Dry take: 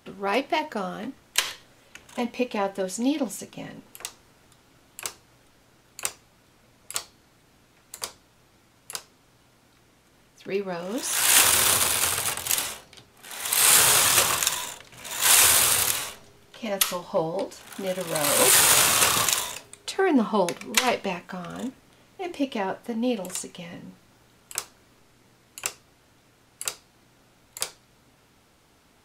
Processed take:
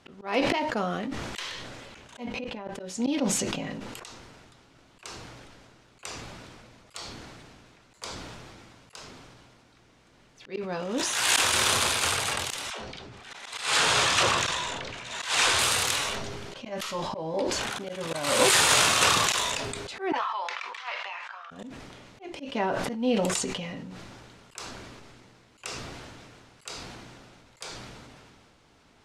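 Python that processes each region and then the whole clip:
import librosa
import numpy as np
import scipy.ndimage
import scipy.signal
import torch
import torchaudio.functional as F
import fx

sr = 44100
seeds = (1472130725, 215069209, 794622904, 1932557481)

y = fx.chain(x, sr, fx.bass_treble(bass_db=5, treble_db=-6),
    fx.over_compress(threshold_db=-31.0, ratio=-0.5), at=(2.27, 2.74))
y = fx.chain(y, sr, fx.bessel_lowpass(hz=6000.0, order=2),
    fx.dispersion(late='lows', ms=106.0, hz=410.0), at=(12.7, 15.59))
y = fx.chain(y, sr, fx.highpass(hz=990.0, slope=24),
    fx.spacing_loss(db_at_10k=22), at=(20.12, 21.51))
y = scipy.signal.sosfilt(scipy.signal.butter(2, 6500.0, 'lowpass', fs=sr, output='sos'), y)
y = fx.auto_swell(y, sr, attack_ms=190.0)
y = fx.sustainer(y, sr, db_per_s=24.0)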